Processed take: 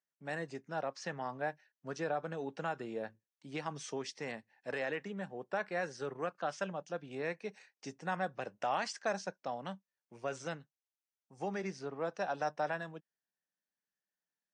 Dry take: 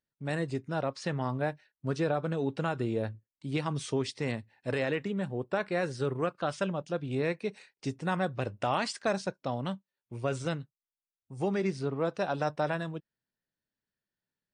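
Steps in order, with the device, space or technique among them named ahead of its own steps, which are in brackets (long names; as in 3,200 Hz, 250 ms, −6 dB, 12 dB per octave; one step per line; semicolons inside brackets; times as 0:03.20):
television speaker (loudspeaker in its box 180–8,100 Hz, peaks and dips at 250 Hz −6 dB, 360 Hz −4 dB, 770 Hz +5 dB, 1,700 Hz +5 dB, 3,800 Hz −4 dB, 6,000 Hz +7 dB)
level −6.5 dB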